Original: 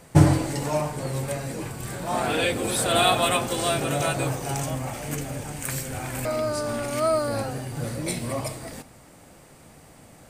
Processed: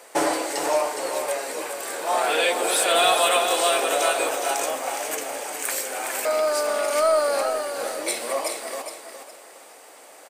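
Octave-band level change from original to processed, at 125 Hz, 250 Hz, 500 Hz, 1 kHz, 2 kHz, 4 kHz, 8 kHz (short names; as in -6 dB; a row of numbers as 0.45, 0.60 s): under -30 dB, -8.0 dB, +4.0 dB, +4.0 dB, +4.5 dB, +3.5 dB, +5.0 dB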